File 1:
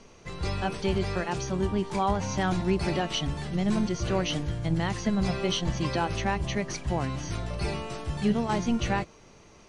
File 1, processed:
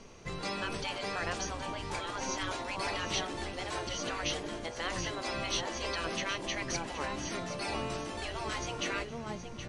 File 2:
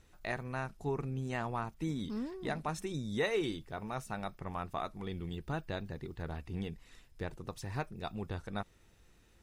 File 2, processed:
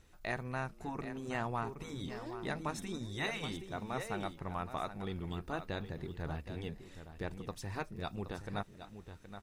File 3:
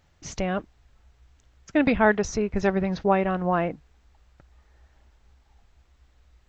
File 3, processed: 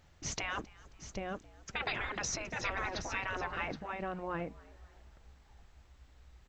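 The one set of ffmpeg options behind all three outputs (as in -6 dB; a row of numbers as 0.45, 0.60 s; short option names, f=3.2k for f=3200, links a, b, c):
-filter_complex "[0:a]asplit=2[a][b];[b]aecho=0:1:771:0.282[c];[a][c]amix=inputs=2:normalize=0,afftfilt=real='re*lt(hypot(re,im),0.126)':imag='im*lt(hypot(re,im),0.126)':win_size=1024:overlap=0.75,asplit=2[d][e];[e]asplit=3[f][g][h];[f]adelay=268,afreqshift=100,volume=-23dB[i];[g]adelay=536,afreqshift=200,volume=-30.7dB[j];[h]adelay=804,afreqshift=300,volume=-38.5dB[k];[i][j][k]amix=inputs=3:normalize=0[l];[d][l]amix=inputs=2:normalize=0"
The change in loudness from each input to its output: -6.5, -1.5, -13.5 LU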